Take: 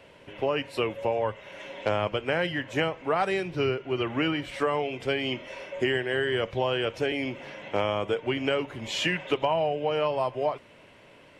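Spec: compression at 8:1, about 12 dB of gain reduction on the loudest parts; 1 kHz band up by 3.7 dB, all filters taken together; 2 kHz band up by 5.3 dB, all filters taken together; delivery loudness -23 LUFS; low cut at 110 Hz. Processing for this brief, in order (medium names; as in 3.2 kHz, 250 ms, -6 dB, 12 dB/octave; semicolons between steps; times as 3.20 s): high-pass 110 Hz; peaking EQ 1 kHz +3.5 dB; peaking EQ 2 kHz +5.5 dB; compression 8:1, threshold -31 dBFS; trim +12.5 dB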